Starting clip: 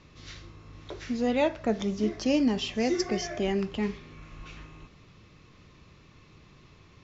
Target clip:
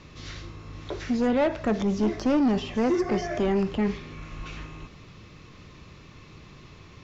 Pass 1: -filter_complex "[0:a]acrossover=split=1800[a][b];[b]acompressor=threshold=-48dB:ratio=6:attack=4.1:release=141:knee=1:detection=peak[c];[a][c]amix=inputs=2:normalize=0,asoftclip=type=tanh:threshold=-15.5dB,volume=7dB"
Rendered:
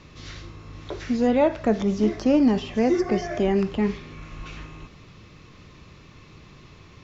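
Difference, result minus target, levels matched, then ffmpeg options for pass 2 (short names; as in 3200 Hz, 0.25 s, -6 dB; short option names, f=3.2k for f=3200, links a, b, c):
soft clip: distortion -13 dB
-filter_complex "[0:a]acrossover=split=1800[a][b];[b]acompressor=threshold=-48dB:ratio=6:attack=4.1:release=141:knee=1:detection=peak[c];[a][c]amix=inputs=2:normalize=0,asoftclip=type=tanh:threshold=-25dB,volume=7dB"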